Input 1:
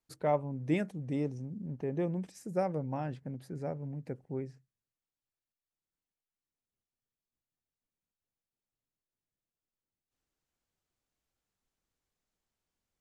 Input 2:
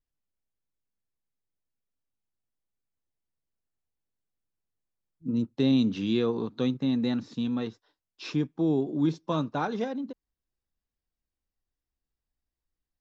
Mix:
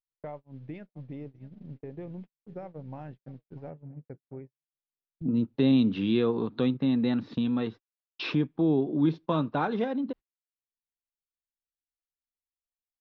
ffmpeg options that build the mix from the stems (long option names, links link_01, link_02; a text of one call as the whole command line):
ffmpeg -i stem1.wav -i stem2.wav -filter_complex "[0:a]equalizer=frequency=95:width=0.94:gain=3,acompressor=threshold=-34dB:ratio=12,volume=-2.5dB,asplit=3[link_01][link_02][link_03];[link_02]volume=-15.5dB[link_04];[1:a]acompressor=mode=upward:threshold=-25dB:ratio=2.5,volume=1dB,asplit=3[link_05][link_06][link_07];[link_05]atrim=end=3.7,asetpts=PTS-STARTPTS,afade=type=out:start_time=3.696:duration=0.004:curve=hsin[link_08];[link_06]atrim=start=3.7:end=4.73,asetpts=PTS-STARTPTS,volume=0[link_09];[link_07]atrim=start=4.73,asetpts=PTS-STARTPTS,afade=type=in:duration=0.004:curve=hsin[link_10];[link_08][link_09][link_10]concat=n=3:v=0:a=1[link_11];[link_03]apad=whole_len=573385[link_12];[link_11][link_12]sidechaincompress=threshold=-46dB:ratio=5:attack=11:release=997[link_13];[link_04]aecho=0:1:645|1290|1935|2580:1|0.23|0.0529|0.0122[link_14];[link_01][link_13][link_14]amix=inputs=3:normalize=0,agate=range=-57dB:threshold=-41dB:ratio=16:detection=peak,lowpass=frequency=3700:width=0.5412,lowpass=frequency=3700:width=1.3066" out.wav